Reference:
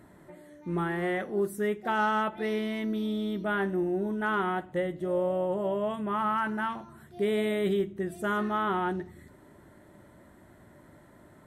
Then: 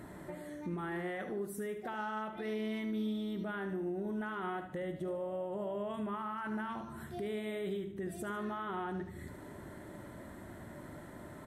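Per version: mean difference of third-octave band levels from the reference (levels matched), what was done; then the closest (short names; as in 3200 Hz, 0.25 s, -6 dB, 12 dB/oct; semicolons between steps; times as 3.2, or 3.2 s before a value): 6.0 dB: compressor 2:1, threshold -46 dBFS, peak gain reduction 12.5 dB; limiter -37 dBFS, peak gain reduction 8.5 dB; on a send: feedback echo 74 ms, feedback 38%, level -10 dB; on the sum: gain +5.5 dB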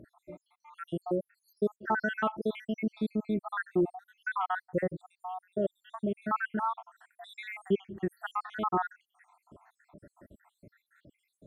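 13.0 dB: random spectral dropouts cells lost 78%; high shelf 4200 Hz -10 dB; notch 2000 Hz, Q 21; gain +3.5 dB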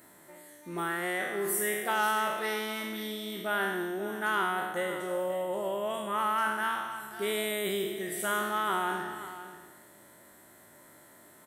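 9.0 dB: spectral trails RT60 1.16 s; RIAA curve recording; echo 0.534 s -13.5 dB; gain -2 dB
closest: first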